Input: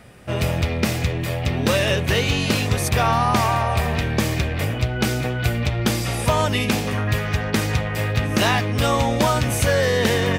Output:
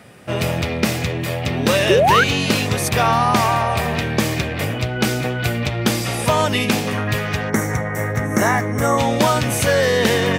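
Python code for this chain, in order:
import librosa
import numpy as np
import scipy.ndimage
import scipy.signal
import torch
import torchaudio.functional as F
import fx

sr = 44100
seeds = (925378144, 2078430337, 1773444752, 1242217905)

y = fx.spec_box(x, sr, start_s=7.49, length_s=1.49, low_hz=2300.0, high_hz=5400.0, gain_db=-17)
y = scipy.signal.sosfilt(scipy.signal.butter(2, 120.0, 'highpass', fs=sr, output='sos'), y)
y = fx.spec_paint(y, sr, seeds[0], shape='rise', start_s=1.89, length_s=0.35, low_hz=340.0, high_hz=1700.0, level_db=-17.0)
y = F.gain(torch.from_numpy(y), 3.0).numpy()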